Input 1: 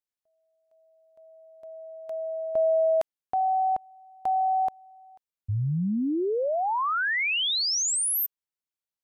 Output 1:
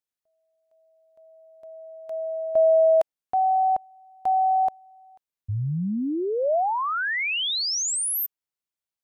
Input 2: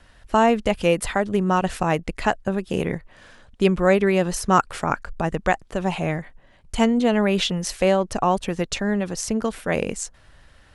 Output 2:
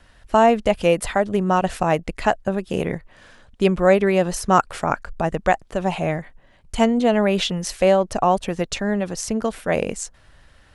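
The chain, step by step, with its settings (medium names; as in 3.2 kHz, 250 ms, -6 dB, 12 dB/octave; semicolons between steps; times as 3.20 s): dynamic bell 650 Hz, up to +5 dB, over -33 dBFS, Q 2.2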